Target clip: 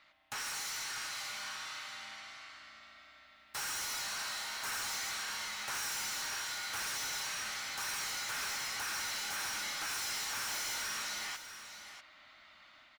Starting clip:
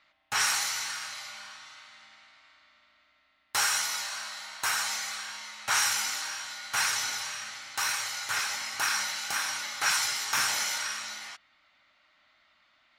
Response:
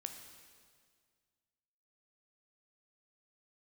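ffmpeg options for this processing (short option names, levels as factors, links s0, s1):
-filter_complex "[0:a]asplit=2[s0][s1];[s1]acompressor=threshold=0.00631:ratio=6,volume=0.944[s2];[s0][s2]amix=inputs=2:normalize=0,alimiter=limit=0.1:level=0:latency=1,dynaudnorm=f=800:g=3:m=1.88,asoftclip=type=tanh:threshold=0.0251,aecho=1:1:643:0.299,volume=0.596"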